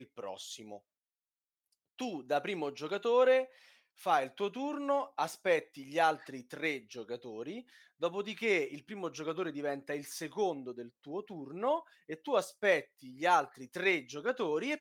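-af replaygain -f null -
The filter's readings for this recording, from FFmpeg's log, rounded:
track_gain = +11.8 dB
track_peak = 0.118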